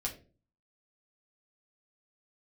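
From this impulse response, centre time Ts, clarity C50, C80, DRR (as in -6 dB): 14 ms, 11.5 dB, 16.0 dB, -1.5 dB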